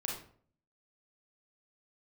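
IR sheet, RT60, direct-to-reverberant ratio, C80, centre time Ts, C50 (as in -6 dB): 0.50 s, -2.0 dB, 8.5 dB, 38 ms, 3.0 dB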